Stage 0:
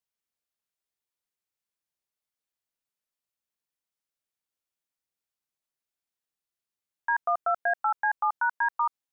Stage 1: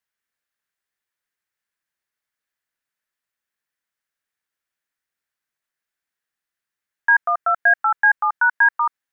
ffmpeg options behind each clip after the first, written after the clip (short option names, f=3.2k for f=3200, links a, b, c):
-af "equalizer=f=1.7k:t=o:w=0.82:g=12.5,volume=2dB"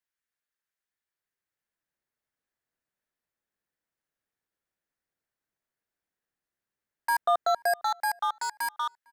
-filter_complex "[0:a]acrossover=split=810|930[a][b][c];[a]dynaudnorm=f=270:g=11:m=11dB[d];[c]aeval=exprs='0.0562*(abs(mod(val(0)/0.0562+3,4)-2)-1)':c=same[e];[d][b][e]amix=inputs=3:normalize=0,asplit=2[f][g];[g]adelay=454.8,volume=-28dB,highshelf=f=4k:g=-10.2[h];[f][h]amix=inputs=2:normalize=0,volume=-7dB"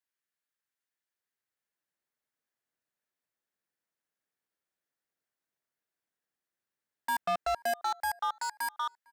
-filter_complex "[0:a]asplit=2[a][b];[b]asoftclip=type=tanh:threshold=-30.5dB,volume=-9dB[c];[a][c]amix=inputs=2:normalize=0,highpass=f=150:p=1,asoftclip=type=hard:threshold=-21dB,volume=-4.5dB"